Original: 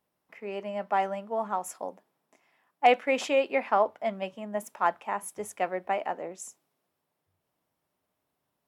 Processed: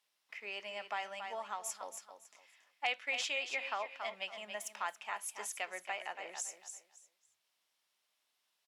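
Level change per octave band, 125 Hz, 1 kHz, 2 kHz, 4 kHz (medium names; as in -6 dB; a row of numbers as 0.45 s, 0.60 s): no reading, -14.0 dB, -4.0 dB, 0.0 dB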